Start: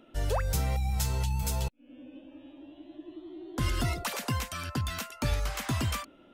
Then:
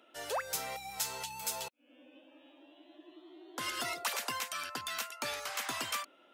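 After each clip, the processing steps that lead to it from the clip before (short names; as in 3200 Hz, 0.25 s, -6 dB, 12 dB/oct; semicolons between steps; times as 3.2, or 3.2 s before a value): Bessel high-pass 700 Hz, order 2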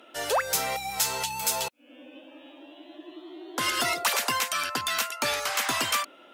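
sine folder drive 4 dB, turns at -19.5 dBFS; gain +3 dB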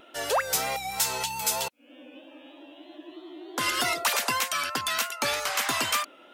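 vibrato 3.2 Hz 37 cents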